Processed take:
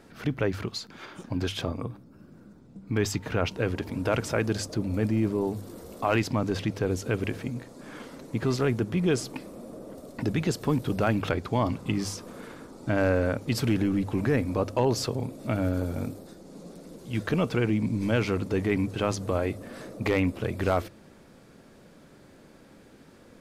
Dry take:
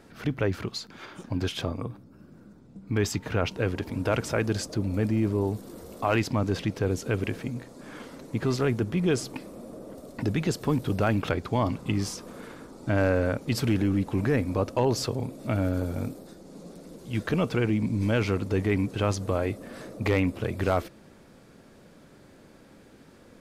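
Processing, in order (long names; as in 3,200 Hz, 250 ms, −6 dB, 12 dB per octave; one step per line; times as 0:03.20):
mains-hum notches 50/100 Hz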